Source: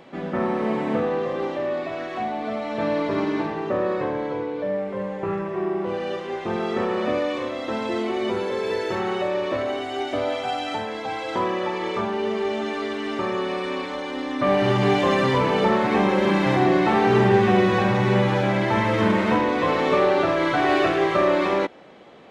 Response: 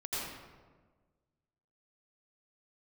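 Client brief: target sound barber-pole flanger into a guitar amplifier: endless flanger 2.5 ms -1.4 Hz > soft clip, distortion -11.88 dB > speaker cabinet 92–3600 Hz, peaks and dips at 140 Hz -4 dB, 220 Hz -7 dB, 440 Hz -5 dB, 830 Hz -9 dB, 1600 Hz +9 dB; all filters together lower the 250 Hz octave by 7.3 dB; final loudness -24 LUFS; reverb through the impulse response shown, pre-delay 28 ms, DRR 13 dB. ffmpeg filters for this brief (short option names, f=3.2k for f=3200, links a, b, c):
-filter_complex "[0:a]equalizer=f=250:t=o:g=-6,asplit=2[a][b];[1:a]atrim=start_sample=2205,adelay=28[c];[b][c]afir=irnorm=-1:irlink=0,volume=-17dB[d];[a][d]amix=inputs=2:normalize=0,asplit=2[e][f];[f]adelay=2.5,afreqshift=-1.4[g];[e][g]amix=inputs=2:normalize=1,asoftclip=threshold=-23dB,highpass=92,equalizer=f=140:t=q:w=4:g=-4,equalizer=f=220:t=q:w=4:g=-7,equalizer=f=440:t=q:w=4:g=-5,equalizer=f=830:t=q:w=4:g=-9,equalizer=f=1.6k:t=q:w=4:g=9,lowpass=f=3.6k:w=0.5412,lowpass=f=3.6k:w=1.3066,volume=7dB"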